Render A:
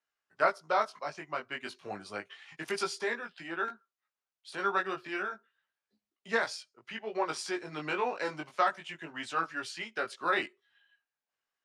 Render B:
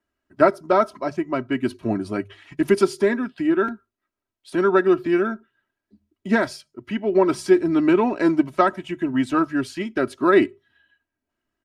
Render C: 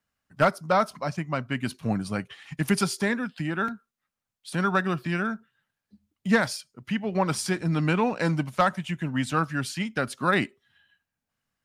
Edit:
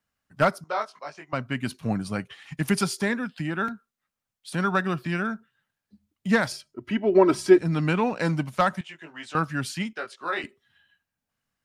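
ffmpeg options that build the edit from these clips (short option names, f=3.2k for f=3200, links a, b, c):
-filter_complex "[0:a]asplit=3[a][b][c];[2:a]asplit=5[d][e][f][g][h];[d]atrim=end=0.642[i];[a]atrim=start=0.638:end=1.332[j];[e]atrim=start=1.328:end=6.522[k];[1:a]atrim=start=6.518:end=7.582[l];[f]atrim=start=7.578:end=8.812[m];[b]atrim=start=8.808:end=9.352[n];[g]atrim=start=9.348:end=9.932[o];[c]atrim=start=9.928:end=10.442[p];[h]atrim=start=10.438[q];[i][j]acrossfade=d=0.004:c1=hsin:c2=hsin[r];[r][k]acrossfade=d=0.004:c1=hsin:c2=hsin[s];[s][l]acrossfade=d=0.004:c1=hsin:c2=hsin[t];[t][m]acrossfade=d=0.004:c1=hsin:c2=hsin[u];[u][n]acrossfade=d=0.004:c1=hsin:c2=hsin[v];[v][o]acrossfade=d=0.004:c1=hsin:c2=hsin[w];[w][p]acrossfade=d=0.004:c1=hsin:c2=hsin[x];[x][q]acrossfade=d=0.004:c1=hsin:c2=hsin"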